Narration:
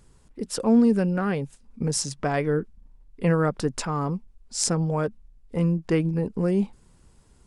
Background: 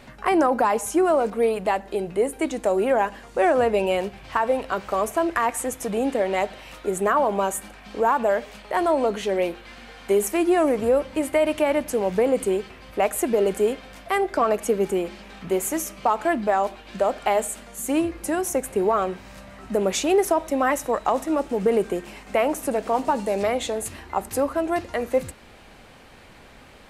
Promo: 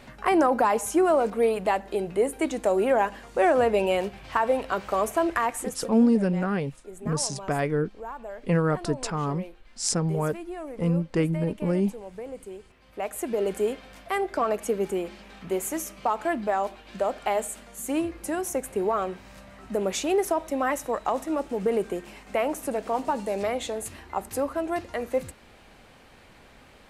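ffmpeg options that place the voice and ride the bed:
-filter_complex "[0:a]adelay=5250,volume=-1.5dB[a];[1:a]volume=11.5dB,afade=t=out:st=5.29:d=0.74:silence=0.158489,afade=t=in:st=12.69:d=0.87:silence=0.223872[b];[a][b]amix=inputs=2:normalize=0"

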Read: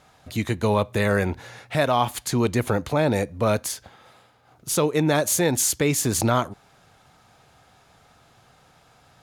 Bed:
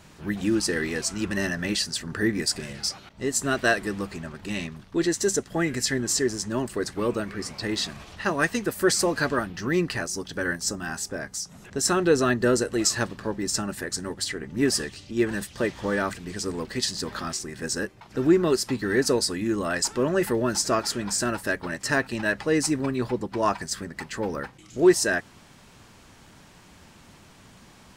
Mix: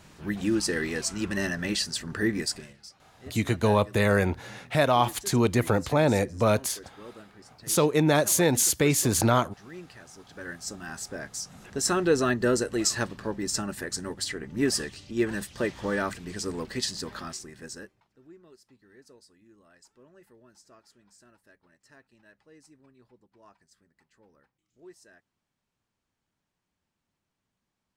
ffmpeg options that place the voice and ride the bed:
-filter_complex "[0:a]adelay=3000,volume=-1dB[a];[1:a]volume=15dB,afade=t=out:st=2.37:d=0.4:silence=0.133352,afade=t=in:st=10.13:d=1.36:silence=0.141254,afade=t=out:st=16.73:d=1.42:silence=0.0316228[b];[a][b]amix=inputs=2:normalize=0"

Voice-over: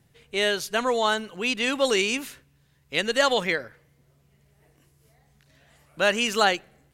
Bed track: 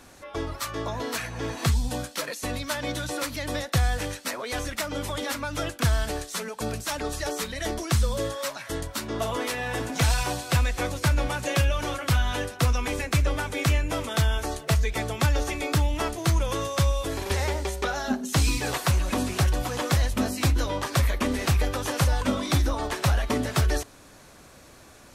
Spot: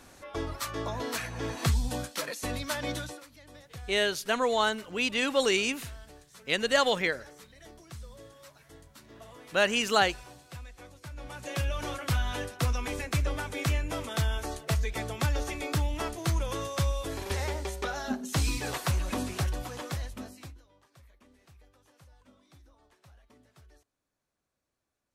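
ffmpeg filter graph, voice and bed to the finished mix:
-filter_complex "[0:a]adelay=3550,volume=-3dB[a];[1:a]volume=13dB,afade=t=out:st=2.94:d=0.27:silence=0.11885,afade=t=in:st=11.12:d=0.73:silence=0.158489,afade=t=out:st=19.15:d=1.47:silence=0.0334965[b];[a][b]amix=inputs=2:normalize=0"

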